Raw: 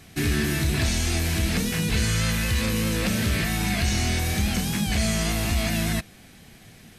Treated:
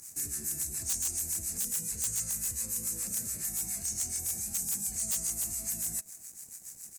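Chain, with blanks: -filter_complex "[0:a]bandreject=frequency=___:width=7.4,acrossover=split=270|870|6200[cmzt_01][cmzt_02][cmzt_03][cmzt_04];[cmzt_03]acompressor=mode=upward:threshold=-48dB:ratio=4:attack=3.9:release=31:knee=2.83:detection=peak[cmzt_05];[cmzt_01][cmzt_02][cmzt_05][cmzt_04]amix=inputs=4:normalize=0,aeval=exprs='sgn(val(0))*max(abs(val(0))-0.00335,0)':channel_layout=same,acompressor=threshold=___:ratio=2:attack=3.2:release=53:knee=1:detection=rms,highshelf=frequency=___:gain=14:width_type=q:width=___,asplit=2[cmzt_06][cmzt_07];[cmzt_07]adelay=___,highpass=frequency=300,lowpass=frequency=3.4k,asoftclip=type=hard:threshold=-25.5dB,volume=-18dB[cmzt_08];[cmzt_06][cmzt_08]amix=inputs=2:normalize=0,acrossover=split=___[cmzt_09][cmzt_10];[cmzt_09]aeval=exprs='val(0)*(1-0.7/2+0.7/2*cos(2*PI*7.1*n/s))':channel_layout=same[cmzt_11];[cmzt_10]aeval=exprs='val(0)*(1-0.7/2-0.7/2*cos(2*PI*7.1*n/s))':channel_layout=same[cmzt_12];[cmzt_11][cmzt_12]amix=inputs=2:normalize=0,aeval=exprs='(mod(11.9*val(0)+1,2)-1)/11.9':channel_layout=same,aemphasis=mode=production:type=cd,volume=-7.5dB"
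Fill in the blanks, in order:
3.2k, -45dB, 5.1k, 3, 220, 790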